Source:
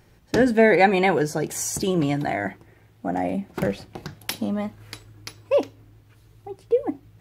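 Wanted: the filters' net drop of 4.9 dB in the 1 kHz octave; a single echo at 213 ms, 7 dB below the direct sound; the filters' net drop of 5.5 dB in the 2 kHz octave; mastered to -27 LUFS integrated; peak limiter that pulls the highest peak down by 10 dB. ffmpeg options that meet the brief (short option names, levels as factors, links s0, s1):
-af "equalizer=f=1000:t=o:g=-7,equalizer=f=2000:t=o:g=-4.5,alimiter=limit=0.15:level=0:latency=1,aecho=1:1:213:0.447,volume=1.06"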